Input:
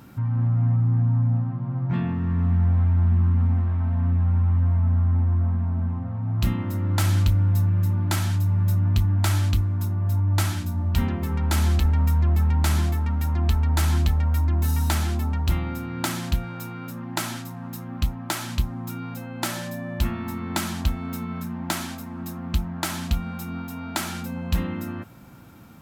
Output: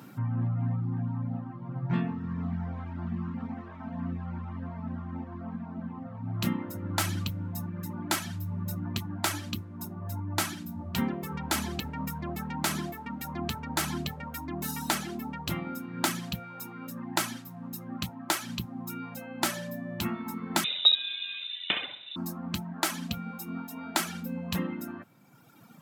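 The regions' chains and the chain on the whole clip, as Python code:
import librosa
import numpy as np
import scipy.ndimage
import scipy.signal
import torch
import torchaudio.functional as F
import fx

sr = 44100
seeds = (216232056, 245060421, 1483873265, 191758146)

y = fx.chain(x, sr, fx.room_flutter(wall_m=11.3, rt60_s=0.7),
    fx.freq_invert(carrier_hz=3800), at=(20.64, 22.16))
y = fx.dereverb_blind(y, sr, rt60_s=1.8)
y = scipy.signal.sosfilt(scipy.signal.butter(4, 130.0, 'highpass', fs=sr, output='sos'), y)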